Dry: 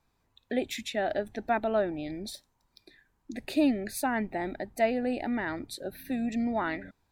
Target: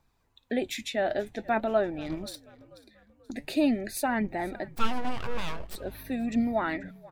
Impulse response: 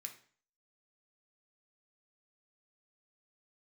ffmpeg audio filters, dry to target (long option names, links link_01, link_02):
-filter_complex "[0:a]asettb=1/sr,asplit=3[link_01][link_02][link_03];[link_01]atrim=end=4.694[link_04];[link_02]atrim=start=4.69:end=5.76,asetpts=PTS-STARTPTS,afade=type=in:duration=0.004:curve=qsin,afade=type=out:start_time=1.066:duration=0.004:curve=qsin,aeval=exprs='abs(val(0))':channel_layout=same[link_05];[link_03]atrim=start=5.756[link_06];[link_04][link_05]acrossfade=duration=0.004:curve1=hsin:curve2=qsin[link_07];[link_07][link_06]acrossfade=duration=0.004:curve1=qsin:curve2=hsin,flanger=delay=0:depth=8.8:regen=67:speed=0.47:shape=triangular,asettb=1/sr,asplit=3[link_08][link_09][link_10];[link_08]atrim=end=2.014[link_11];[link_09]atrim=start=2.01:end=3.32,asetpts=PTS-STARTPTS,afade=type=in:duration=0.004:curve=qsin,afade=type=out:start_time=1.306:duration=0.004:curve=qsin,aeval=exprs='0.0316*(cos(1*acos(clip(val(0)/0.0316,-1,1)))-cos(1*PI/2))+0.00316*(cos(6*acos(clip(val(0)/0.0316,-1,1)))-cos(6*PI/2))+0.002*(cos(7*acos(clip(val(0)/0.0316,-1,1)))-cos(7*PI/2))+0.002*(cos(8*acos(clip(val(0)/0.0316,-1,1)))-cos(8*PI/2))':channel_layout=same[link_12];[link_10]atrim=start=3.316[link_13];[link_11][link_12]acrossfade=duration=0.004:curve1=hsin:curve2=qsin[link_14];[link_14][link_13]acrossfade=duration=0.004:curve1=qsin:curve2=hsin,asplit=4[link_15][link_16][link_17][link_18];[link_16]adelay=485,afreqshift=-50,volume=-21.5dB[link_19];[link_17]adelay=970,afreqshift=-100,volume=-28.8dB[link_20];[link_18]adelay=1455,afreqshift=-150,volume=-36.2dB[link_21];[link_15][link_19][link_20][link_21]amix=inputs=4:normalize=0,volume=5.5dB"